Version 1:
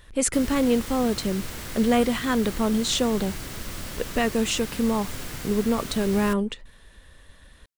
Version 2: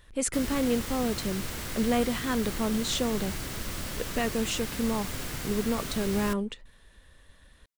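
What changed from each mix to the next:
speech -5.5 dB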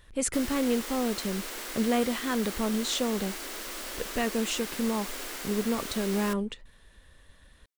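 background: add high-pass 310 Hz 24 dB/octave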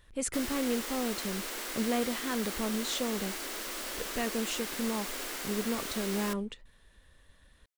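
speech -4.5 dB

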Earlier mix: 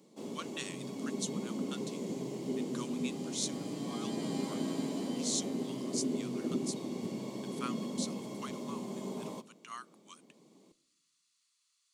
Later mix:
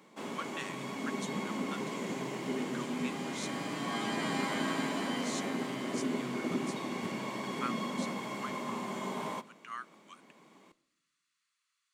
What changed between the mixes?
speech -11.5 dB; master: remove FFT filter 450 Hz 0 dB, 1.6 kHz -19 dB, 4.6 kHz -3 dB

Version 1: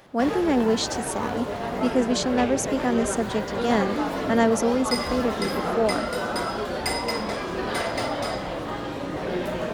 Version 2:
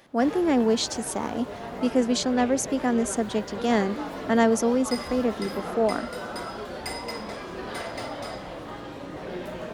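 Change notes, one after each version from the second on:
background -7.0 dB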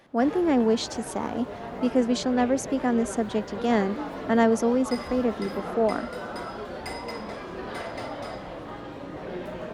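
master: add treble shelf 3.9 kHz -8 dB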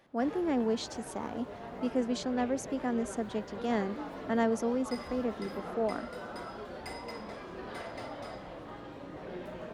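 speech -8.0 dB; background -7.0 dB

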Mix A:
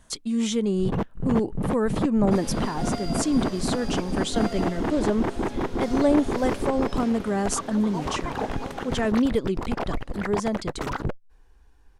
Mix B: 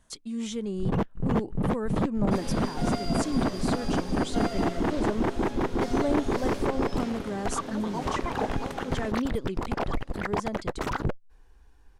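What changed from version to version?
speech -8.0 dB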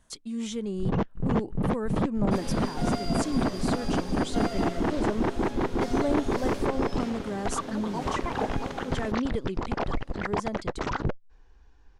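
first sound: add steep low-pass 6.8 kHz

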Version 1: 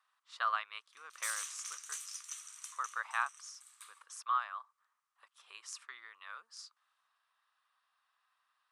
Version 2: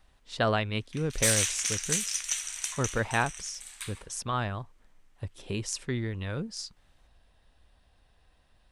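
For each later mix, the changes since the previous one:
background: add peaking EQ 1.9 kHz +9.5 dB 2.3 oct; master: remove ladder high-pass 1.1 kHz, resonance 75%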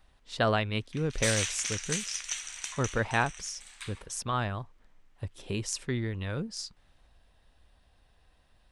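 background: add distance through air 66 m

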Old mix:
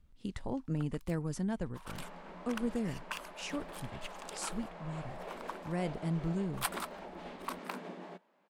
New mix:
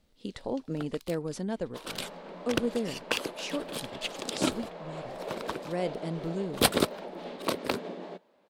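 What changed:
speech: add bass shelf 190 Hz -8.5 dB; first sound: remove ladder high-pass 800 Hz, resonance 45%; master: add graphic EQ 250/500/4000 Hz +4/+9/+8 dB

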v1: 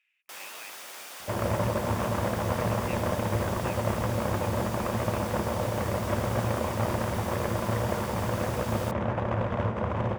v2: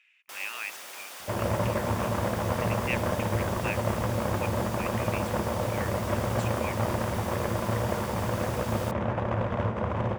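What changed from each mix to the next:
speech +11.0 dB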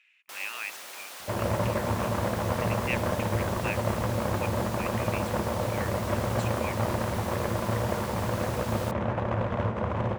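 master: remove band-stop 4.1 kHz, Q 17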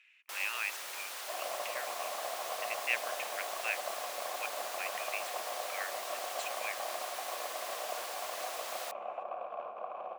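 second sound: add vowel filter a; master: add high-pass 440 Hz 12 dB/octave

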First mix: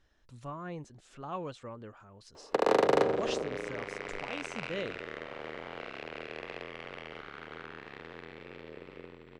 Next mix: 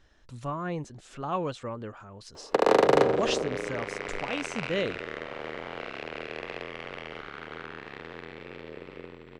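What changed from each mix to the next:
speech +8.0 dB; background +4.5 dB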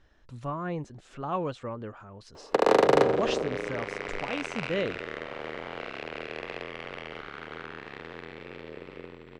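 speech: add treble shelf 4.3 kHz -9.5 dB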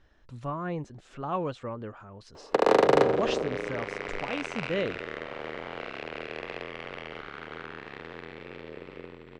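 master: add treble shelf 8.2 kHz -5 dB

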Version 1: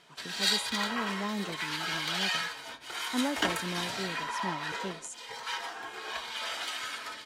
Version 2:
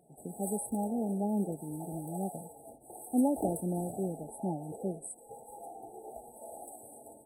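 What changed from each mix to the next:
speech +4.0 dB; master: add brick-wall FIR band-stop 870–7800 Hz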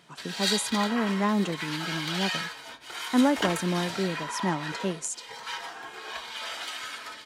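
speech +5.5 dB; master: remove brick-wall FIR band-stop 870–7800 Hz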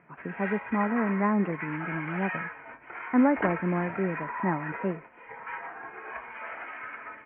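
master: add steep low-pass 2.4 kHz 72 dB/octave

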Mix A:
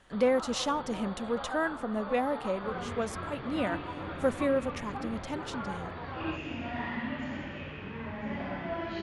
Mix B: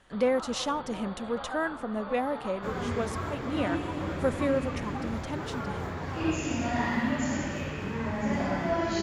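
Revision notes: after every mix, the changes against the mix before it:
second sound: remove four-pole ladder low-pass 3.8 kHz, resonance 35%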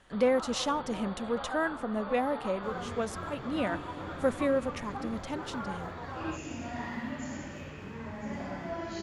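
second sound -9.0 dB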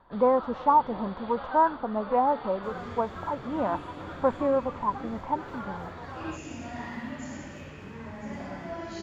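speech: add resonant low-pass 960 Hz, resonance Q 8.5

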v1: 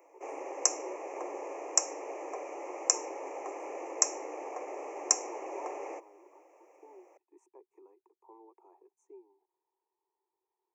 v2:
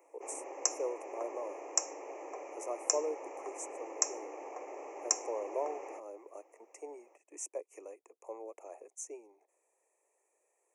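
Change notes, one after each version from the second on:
speech: remove two resonant band-passes 580 Hz, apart 1.3 oct; background -4.5 dB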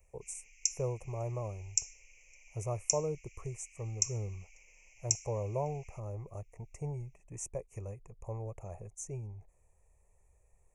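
background: add steep high-pass 2.2 kHz 72 dB/octave; master: remove steep high-pass 280 Hz 72 dB/octave

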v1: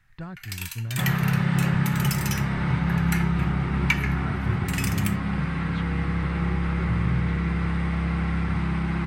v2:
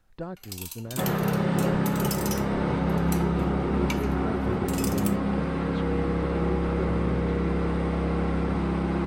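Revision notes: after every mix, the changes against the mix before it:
first sound: add peaking EQ 1.7 kHz -15 dB 0.92 oct; master: add ten-band graphic EQ 125 Hz -11 dB, 250 Hz +6 dB, 500 Hz +12 dB, 2 kHz -7 dB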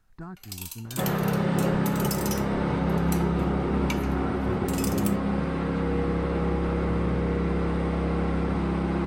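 speech: add static phaser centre 1.3 kHz, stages 4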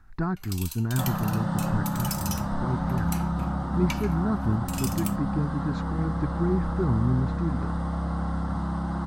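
speech +12.0 dB; second sound: add static phaser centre 1 kHz, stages 4

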